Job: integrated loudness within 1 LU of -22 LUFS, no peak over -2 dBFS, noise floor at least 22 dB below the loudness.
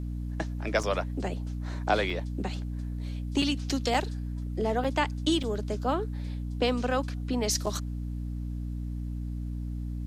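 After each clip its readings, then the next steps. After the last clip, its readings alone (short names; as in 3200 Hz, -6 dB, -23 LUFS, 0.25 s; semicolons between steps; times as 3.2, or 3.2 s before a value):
dropouts 7; longest dropout 4.8 ms; hum 60 Hz; harmonics up to 300 Hz; hum level -31 dBFS; loudness -31.0 LUFS; peak -11.0 dBFS; loudness target -22.0 LUFS
-> interpolate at 0.83/2.1/3.42/3.94/4.84/5.43/7.66, 4.8 ms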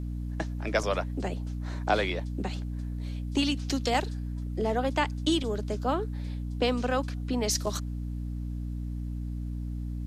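dropouts 0; hum 60 Hz; harmonics up to 300 Hz; hum level -31 dBFS
-> de-hum 60 Hz, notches 5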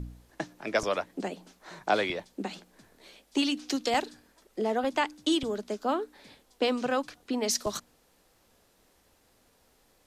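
hum none; loudness -30.5 LUFS; peak -11.0 dBFS; loudness target -22.0 LUFS
-> gain +8.5 dB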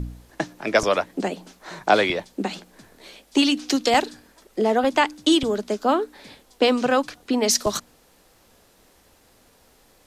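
loudness -22.0 LUFS; peak -2.5 dBFS; noise floor -58 dBFS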